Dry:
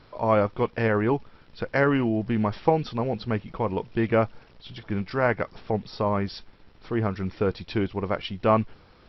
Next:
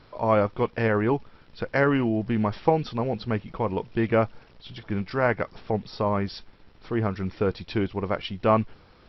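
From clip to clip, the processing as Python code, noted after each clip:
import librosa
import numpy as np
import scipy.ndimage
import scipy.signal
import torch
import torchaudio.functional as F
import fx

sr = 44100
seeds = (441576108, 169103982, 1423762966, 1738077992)

y = x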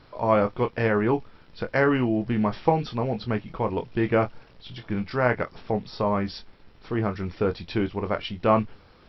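y = fx.doubler(x, sr, ms=24.0, db=-8.5)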